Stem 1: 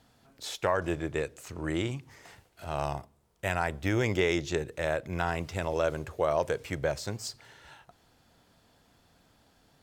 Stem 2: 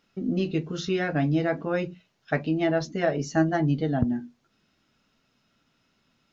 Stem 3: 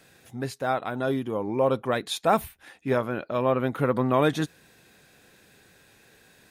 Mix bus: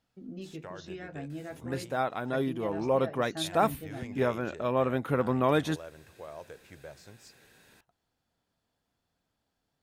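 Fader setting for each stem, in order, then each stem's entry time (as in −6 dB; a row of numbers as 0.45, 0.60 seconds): −17.0, −16.0, −3.5 decibels; 0.00, 0.00, 1.30 seconds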